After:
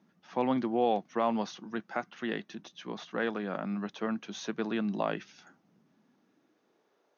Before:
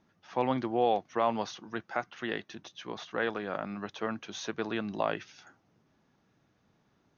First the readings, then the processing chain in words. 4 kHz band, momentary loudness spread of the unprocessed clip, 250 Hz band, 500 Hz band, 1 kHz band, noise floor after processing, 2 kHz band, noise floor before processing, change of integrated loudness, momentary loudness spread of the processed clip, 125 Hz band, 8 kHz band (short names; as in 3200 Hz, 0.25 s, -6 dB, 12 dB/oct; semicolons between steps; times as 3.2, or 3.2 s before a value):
-2.0 dB, 12 LU, +3.5 dB, -0.5 dB, -1.5 dB, -73 dBFS, -2.0 dB, -72 dBFS, 0.0 dB, 12 LU, +0.5 dB, n/a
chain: added harmonics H 6 -44 dB, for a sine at -14.5 dBFS; high-pass sweep 190 Hz -> 520 Hz, 5.89–7.16; gain -2 dB